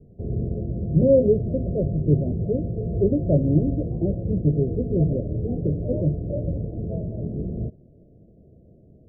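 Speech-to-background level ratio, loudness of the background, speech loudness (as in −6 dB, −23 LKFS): 4.5 dB, −28.5 LKFS, −24.0 LKFS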